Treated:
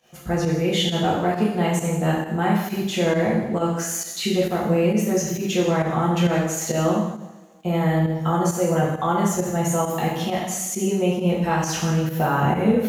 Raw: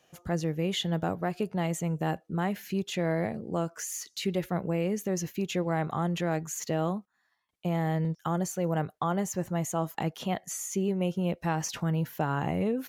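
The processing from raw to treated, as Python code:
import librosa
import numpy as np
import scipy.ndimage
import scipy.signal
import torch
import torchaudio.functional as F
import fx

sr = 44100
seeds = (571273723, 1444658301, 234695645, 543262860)

p1 = fx.dmg_crackle(x, sr, seeds[0], per_s=40.0, level_db=-51.0)
p2 = p1 + fx.echo_single(p1, sr, ms=159, db=-14.5, dry=0)
p3 = fx.rev_double_slope(p2, sr, seeds[1], early_s=0.85, late_s=2.9, knee_db=-25, drr_db=-6.0)
p4 = fx.volume_shaper(p3, sr, bpm=134, per_beat=1, depth_db=-9, release_ms=92.0, shape='fast start')
y = p4 * librosa.db_to_amplitude(2.5)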